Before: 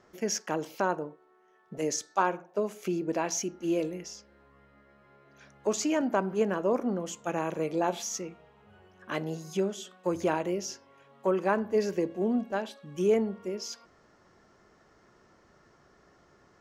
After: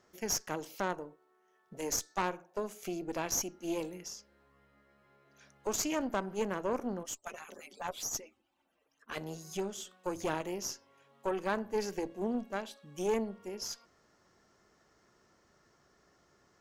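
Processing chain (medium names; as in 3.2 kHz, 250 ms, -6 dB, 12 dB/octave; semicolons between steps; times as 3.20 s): 7.03–9.17 s: harmonic-percussive separation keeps percussive; treble shelf 4.1 kHz +10 dB; valve stage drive 21 dB, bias 0.8; trim -2.5 dB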